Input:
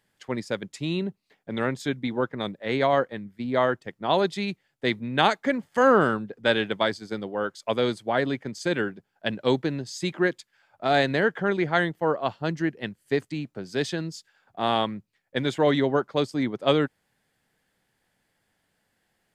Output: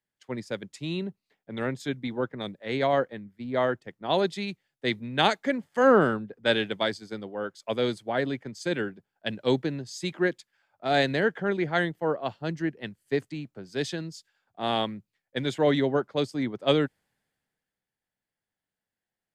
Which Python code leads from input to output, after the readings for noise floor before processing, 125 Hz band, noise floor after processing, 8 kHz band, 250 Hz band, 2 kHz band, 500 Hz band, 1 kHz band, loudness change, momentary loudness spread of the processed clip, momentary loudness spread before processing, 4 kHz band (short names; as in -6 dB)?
-75 dBFS, -2.0 dB, under -85 dBFS, -2.5 dB, -2.0 dB, -2.5 dB, -2.0 dB, -3.5 dB, -2.0 dB, 12 LU, 11 LU, -1.0 dB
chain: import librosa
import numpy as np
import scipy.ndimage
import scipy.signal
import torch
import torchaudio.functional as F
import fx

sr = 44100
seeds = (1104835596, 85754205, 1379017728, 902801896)

y = fx.dynamic_eq(x, sr, hz=1100.0, q=1.7, threshold_db=-38.0, ratio=4.0, max_db=-4)
y = fx.band_widen(y, sr, depth_pct=40)
y = y * 10.0 ** (-2.0 / 20.0)